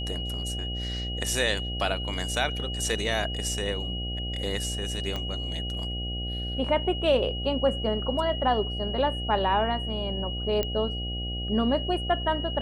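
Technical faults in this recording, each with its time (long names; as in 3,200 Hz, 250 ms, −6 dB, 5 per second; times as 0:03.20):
mains buzz 60 Hz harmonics 13 −33 dBFS
whistle 2,900 Hz −34 dBFS
0:05.16: click −18 dBFS
0:10.63: click −13 dBFS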